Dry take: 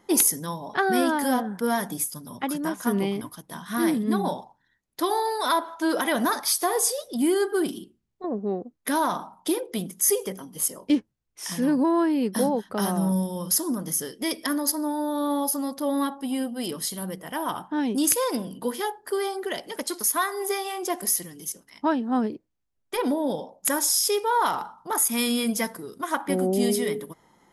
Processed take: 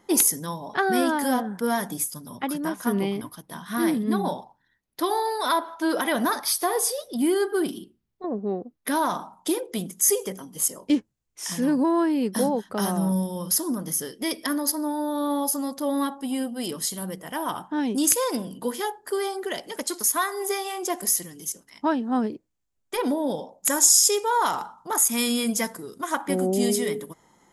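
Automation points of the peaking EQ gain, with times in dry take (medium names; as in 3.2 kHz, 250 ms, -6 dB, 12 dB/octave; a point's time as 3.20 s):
peaking EQ 7.2 kHz 0.43 oct
+2 dB
from 2.35 s -4.5 dB
from 9.06 s +6 dB
from 12.97 s -0.5 dB
from 15.46 s +6 dB
from 23.69 s +14.5 dB
from 24.65 s +8.5 dB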